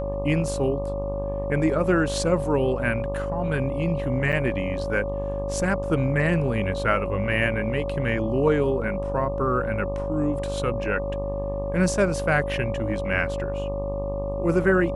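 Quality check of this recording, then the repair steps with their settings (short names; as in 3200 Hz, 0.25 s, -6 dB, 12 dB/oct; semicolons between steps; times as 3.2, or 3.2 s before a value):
buzz 50 Hz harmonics 24 -31 dBFS
tone 560 Hz -28 dBFS
4.32–4.33 gap 7.2 ms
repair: de-hum 50 Hz, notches 24; notch 560 Hz, Q 30; interpolate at 4.32, 7.2 ms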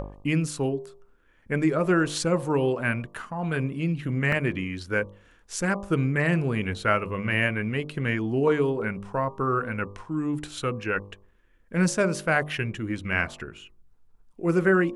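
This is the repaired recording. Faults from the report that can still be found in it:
none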